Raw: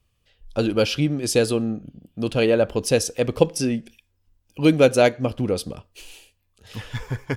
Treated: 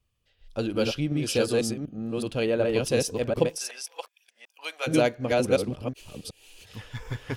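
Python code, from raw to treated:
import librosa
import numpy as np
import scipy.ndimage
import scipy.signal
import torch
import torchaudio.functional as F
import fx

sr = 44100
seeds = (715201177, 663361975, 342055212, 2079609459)

y = fx.reverse_delay(x, sr, ms=371, wet_db=-1.0)
y = fx.highpass(y, sr, hz=770.0, slope=24, at=(3.55, 4.86), fade=0.02)
y = y * librosa.db_to_amplitude(-7.0)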